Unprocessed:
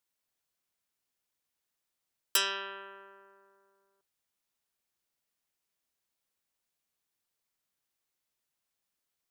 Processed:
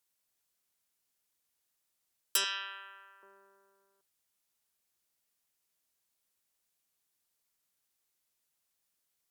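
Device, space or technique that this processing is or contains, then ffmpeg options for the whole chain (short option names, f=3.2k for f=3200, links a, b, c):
clipper into limiter: -filter_complex "[0:a]asettb=1/sr,asplit=3[a][b][c];[a]atrim=end=2.444[d];[b]atrim=start=2.44:end=3.23,asetpts=PTS-STARTPTS,afade=t=in:d=0.004:c=qsin,afade=t=out:st=0.786:d=0.004:c=qsin,highpass=1.2k[e];[c]atrim=start=3.226[f];[d][e]acrossfade=d=0.004:c1=hsin:c2=qsin[g];[g][f]acrossfade=d=0.004:c1=qsin:c2=hsin,equalizer=f=12k:w=0.33:g=6,asoftclip=type=hard:threshold=-10.5dB,alimiter=limit=-16.5dB:level=0:latency=1:release=201"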